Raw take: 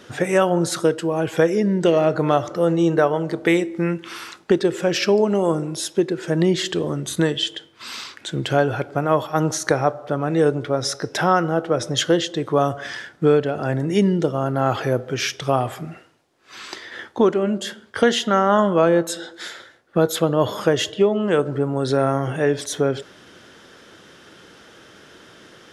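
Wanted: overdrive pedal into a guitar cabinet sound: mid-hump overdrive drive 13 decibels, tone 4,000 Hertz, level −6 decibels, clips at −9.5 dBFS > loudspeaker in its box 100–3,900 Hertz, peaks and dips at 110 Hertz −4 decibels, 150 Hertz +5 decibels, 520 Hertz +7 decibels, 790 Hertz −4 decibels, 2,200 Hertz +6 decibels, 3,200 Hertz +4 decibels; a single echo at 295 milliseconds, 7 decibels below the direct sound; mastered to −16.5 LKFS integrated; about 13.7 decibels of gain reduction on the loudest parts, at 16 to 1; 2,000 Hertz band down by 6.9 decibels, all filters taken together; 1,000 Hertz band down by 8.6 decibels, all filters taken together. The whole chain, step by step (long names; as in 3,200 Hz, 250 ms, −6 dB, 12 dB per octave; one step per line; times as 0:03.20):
parametric band 1,000 Hz −8.5 dB
parametric band 2,000 Hz −9 dB
downward compressor 16 to 1, threshold −26 dBFS
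single-tap delay 295 ms −7 dB
mid-hump overdrive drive 13 dB, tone 4,000 Hz, level −6 dB, clips at −9.5 dBFS
loudspeaker in its box 100–3,900 Hz, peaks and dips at 110 Hz −4 dB, 150 Hz +5 dB, 520 Hz +7 dB, 790 Hz −4 dB, 2,200 Hz +6 dB, 3,200 Hz +4 dB
level +10 dB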